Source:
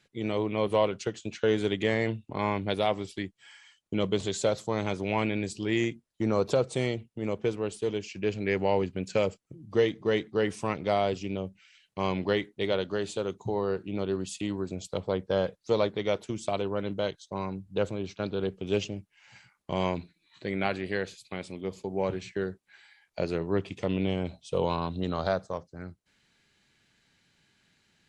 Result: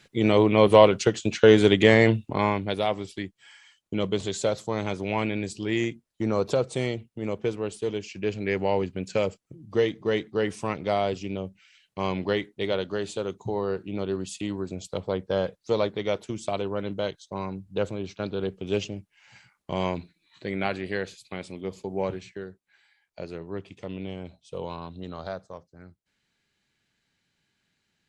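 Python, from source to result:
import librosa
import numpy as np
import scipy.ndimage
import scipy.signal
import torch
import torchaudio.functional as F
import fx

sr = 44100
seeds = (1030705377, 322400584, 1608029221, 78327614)

y = fx.gain(x, sr, db=fx.line((2.19, 10.0), (2.67, 1.0), (22.04, 1.0), (22.45, -7.0)))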